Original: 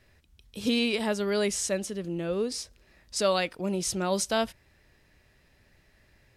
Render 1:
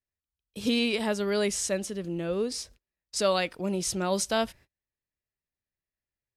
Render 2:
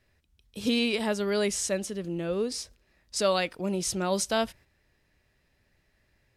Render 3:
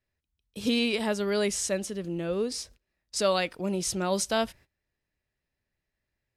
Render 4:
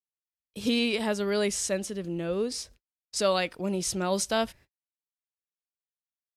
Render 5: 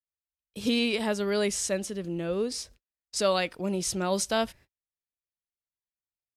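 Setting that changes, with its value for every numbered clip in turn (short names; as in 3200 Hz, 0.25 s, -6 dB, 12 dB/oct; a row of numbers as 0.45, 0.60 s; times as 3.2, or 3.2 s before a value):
gate, range: -34, -7, -22, -59, -47 dB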